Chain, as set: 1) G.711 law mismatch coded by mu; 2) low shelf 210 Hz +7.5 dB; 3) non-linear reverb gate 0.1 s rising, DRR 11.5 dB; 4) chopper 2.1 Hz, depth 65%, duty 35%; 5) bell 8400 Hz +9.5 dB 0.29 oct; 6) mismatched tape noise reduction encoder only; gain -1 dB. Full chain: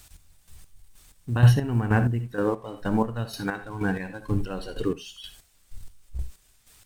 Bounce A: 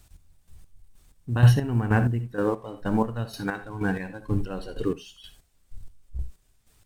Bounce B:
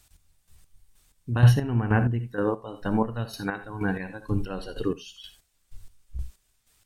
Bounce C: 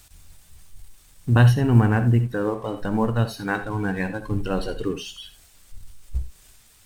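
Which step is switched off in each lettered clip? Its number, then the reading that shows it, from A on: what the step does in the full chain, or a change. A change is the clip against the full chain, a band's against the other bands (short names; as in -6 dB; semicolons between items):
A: 6, 4 kHz band -2.0 dB; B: 1, distortion -24 dB; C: 4, momentary loudness spread change -4 LU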